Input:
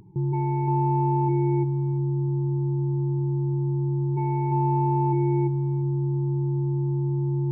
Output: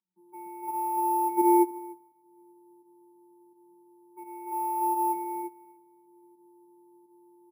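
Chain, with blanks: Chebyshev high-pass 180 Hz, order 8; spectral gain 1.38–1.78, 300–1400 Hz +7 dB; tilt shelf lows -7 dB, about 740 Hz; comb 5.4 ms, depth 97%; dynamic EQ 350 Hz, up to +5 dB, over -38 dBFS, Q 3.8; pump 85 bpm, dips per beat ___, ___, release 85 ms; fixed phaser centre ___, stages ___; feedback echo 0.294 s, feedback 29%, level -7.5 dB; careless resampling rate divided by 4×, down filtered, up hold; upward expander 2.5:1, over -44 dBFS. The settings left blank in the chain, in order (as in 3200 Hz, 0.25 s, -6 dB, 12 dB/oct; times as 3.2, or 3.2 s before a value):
1, -5 dB, 1900 Hz, 6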